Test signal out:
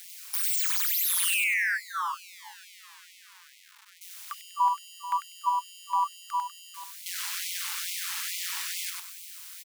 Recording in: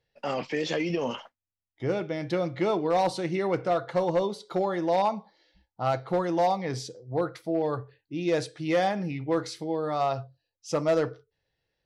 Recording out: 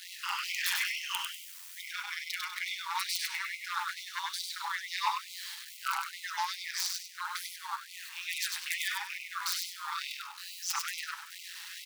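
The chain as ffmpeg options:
ffmpeg -i in.wav -filter_complex "[0:a]aeval=exprs='val(0)+0.5*0.00944*sgn(val(0))':channel_layout=same,highpass=frequency=240:width=0.5412,highpass=frequency=240:width=1.3066,tiltshelf=frequency=640:gain=-10,acrossover=split=1500[link_01][link_02];[link_02]aeval=exprs='(mod(9.44*val(0)+1,2)-1)/9.44':channel_layout=same[link_03];[link_01][link_03]amix=inputs=2:normalize=0,tremolo=f=180:d=0.974,aecho=1:1:98|196|294|392:0.668|0.207|0.0642|0.0199,afftfilt=real='re*gte(b*sr/1024,800*pow(2000/800,0.5+0.5*sin(2*PI*2.3*pts/sr)))':imag='im*gte(b*sr/1024,800*pow(2000/800,0.5+0.5*sin(2*PI*2.3*pts/sr)))':win_size=1024:overlap=0.75,volume=-1.5dB" out.wav

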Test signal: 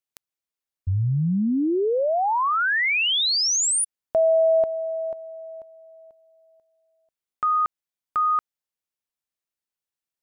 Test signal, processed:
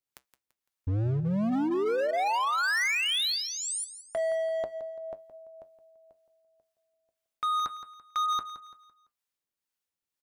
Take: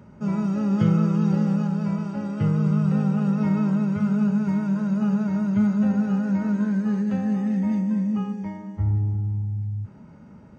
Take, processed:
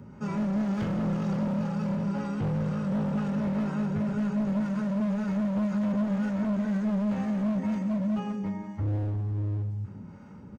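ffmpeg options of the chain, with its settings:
ffmpeg -i in.wav -filter_complex "[0:a]bandreject=frequency=640:width=12,acrossover=split=2900[link_01][link_02];[link_02]acompressor=threshold=-37dB:ratio=4:attack=1:release=60[link_03];[link_01][link_03]amix=inputs=2:normalize=0,asplit=2[link_04][link_05];[link_05]alimiter=limit=-20.5dB:level=0:latency=1,volume=2dB[link_06];[link_04][link_06]amix=inputs=2:normalize=0,acrossover=split=530[link_07][link_08];[link_07]aeval=exprs='val(0)*(1-0.5/2+0.5/2*cos(2*PI*2*n/s))':channel_layout=same[link_09];[link_08]aeval=exprs='val(0)*(1-0.5/2-0.5/2*cos(2*PI*2*n/s))':channel_layout=same[link_10];[link_09][link_10]amix=inputs=2:normalize=0,flanger=delay=7.5:depth=3.5:regen=-71:speed=0.25:shape=sinusoidal,volume=26dB,asoftclip=hard,volume=-26dB,aecho=1:1:169|338|507|676:0.224|0.0828|0.0306|0.0113" out.wav

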